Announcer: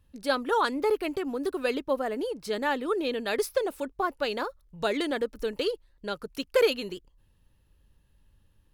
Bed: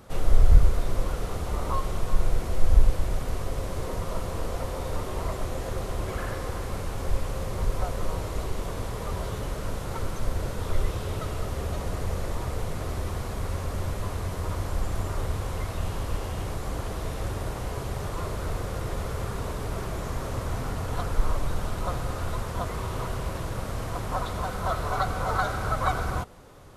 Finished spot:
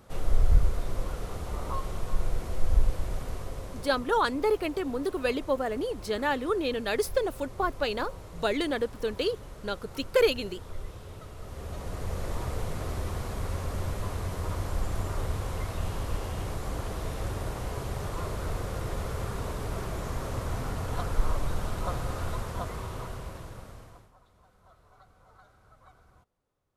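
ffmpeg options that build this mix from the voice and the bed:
-filter_complex "[0:a]adelay=3600,volume=1[s0];[1:a]volume=2,afade=t=out:st=3.21:d=0.95:silence=0.398107,afade=t=in:st=11.36:d=1.02:silence=0.281838,afade=t=out:st=22.25:d=1.87:silence=0.0334965[s1];[s0][s1]amix=inputs=2:normalize=0"

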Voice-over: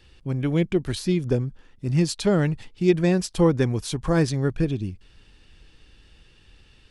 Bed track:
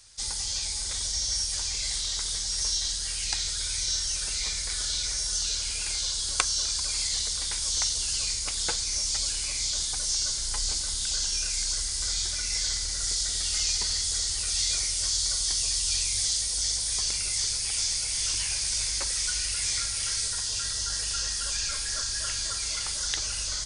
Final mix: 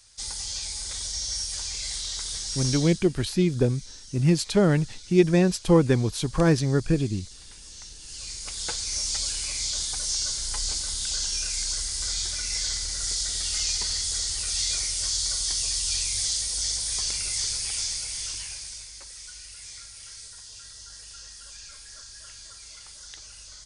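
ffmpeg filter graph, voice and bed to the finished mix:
-filter_complex "[0:a]adelay=2300,volume=1.06[s0];[1:a]volume=5.62,afade=t=out:st=2.69:d=0.39:silence=0.177828,afade=t=in:st=7.99:d=0.99:silence=0.141254,afade=t=out:st=17.59:d=1.28:silence=0.199526[s1];[s0][s1]amix=inputs=2:normalize=0"

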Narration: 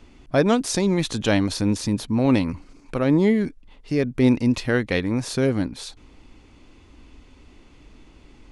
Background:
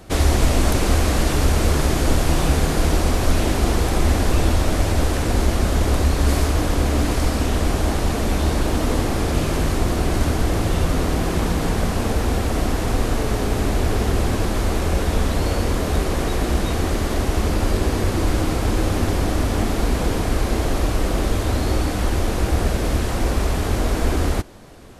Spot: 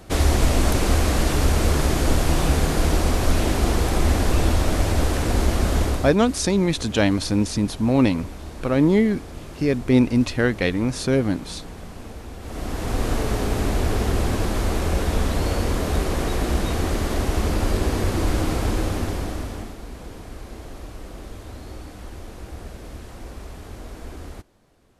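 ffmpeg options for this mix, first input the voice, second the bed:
-filter_complex "[0:a]adelay=5700,volume=1.12[s0];[1:a]volume=4.73,afade=t=out:st=5.8:d=0.36:silence=0.16788,afade=t=in:st=12.39:d=0.71:silence=0.177828,afade=t=out:st=18.6:d=1.17:silence=0.177828[s1];[s0][s1]amix=inputs=2:normalize=0"

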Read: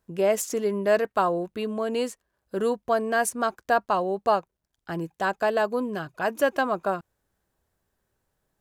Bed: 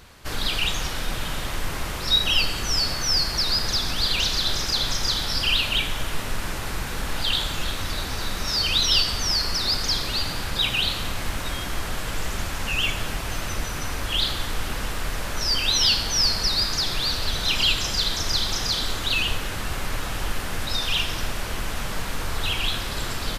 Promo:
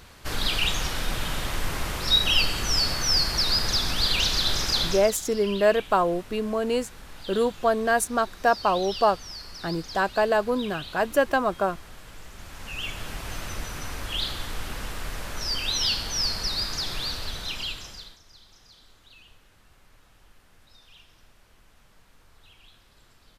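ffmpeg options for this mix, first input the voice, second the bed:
-filter_complex "[0:a]adelay=4750,volume=1.19[s0];[1:a]volume=3.35,afade=t=out:st=4.8:d=0.32:silence=0.158489,afade=t=in:st=12.34:d=0.95:silence=0.281838,afade=t=out:st=17.01:d=1.18:silence=0.0630957[s1];[s0][s1]amix=inputs=2:normalize=0"

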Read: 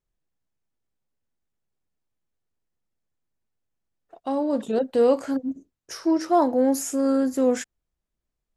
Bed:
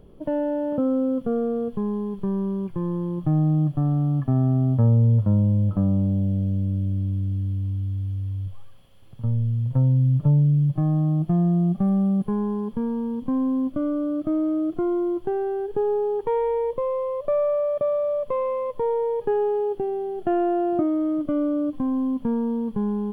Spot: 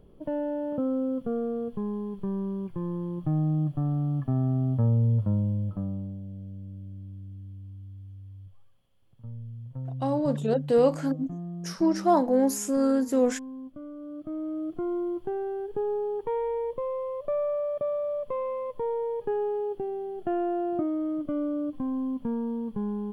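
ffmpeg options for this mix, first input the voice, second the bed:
-filter_complex "[0:a]adelay=5750,volume=0.794[s0];[1:a]volume=1.78,afade=t=out:st=5.22:d=0.98:silence=0.281838,afade=t=in:st=13.96:d=1:silence=0.298538[s1];[s0][s1]amix=inputs=2:normalize=0"

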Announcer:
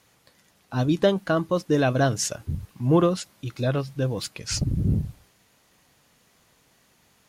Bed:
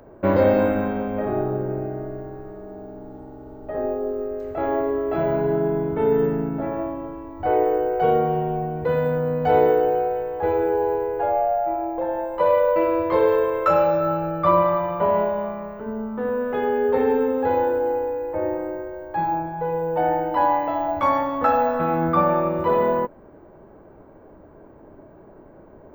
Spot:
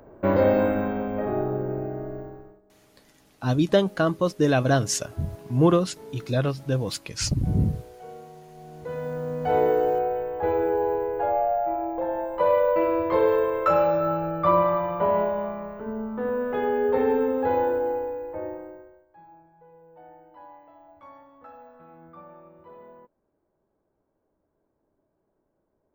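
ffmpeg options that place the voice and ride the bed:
-filter_complex "[0:a]adelay=2700,volume=1.06[s0];[1:a]volume=8.41,afade=t=out:st=2.19:d=0.42:silence=0.0891251,afade=t=in:st=8.52:d=1.39:silence=0.0891251,afade=t=out:st=17.72:d=1.34:silence=0.0530884[s1];[s0][s1]amix=inputs=2:normalize=0"

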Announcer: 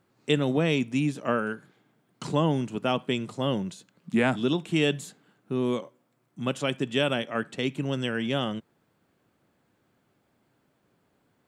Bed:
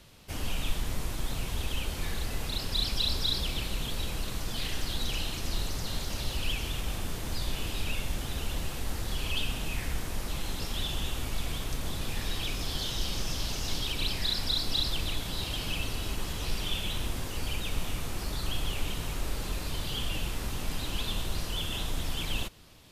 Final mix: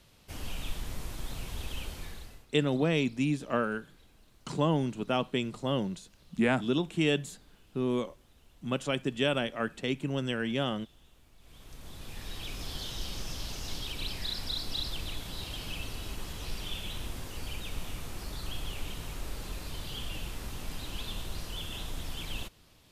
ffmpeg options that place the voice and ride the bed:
-filter_complex "[0:a]adelay=2250,volume=0.708[s0];[1:a]volume=7.08,afade=t=out:st=1.84:d=0.62:silence=0.0749894,afade=t=in:st=11.39:d=1.26:silence=0.0749894[s1];[s0][s1]amix=inputs=2:normalize=0"

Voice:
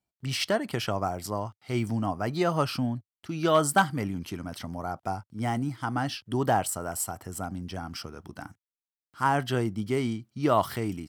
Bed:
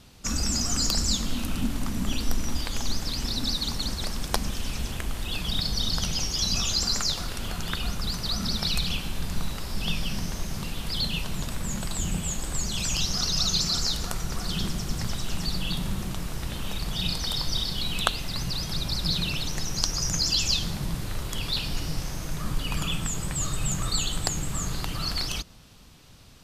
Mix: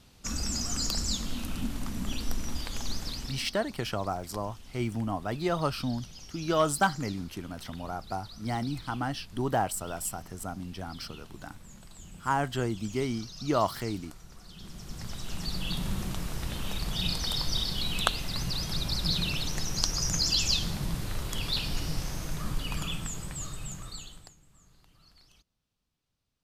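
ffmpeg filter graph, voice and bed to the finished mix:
-filter_complex "[0:a]adelay=3050,volume=0.708[s0];[1:a]volume=3.98,afade=t=out:st=3.08:d=0.42:silence=0.199526,afade=t=in:st=14.57:d=1.39:silence=0.133352,afade=t=out:st=22.17:d=2.19:silence=0.0354813[s1];[s0][s1]amix=inputs=2:normalize=0"

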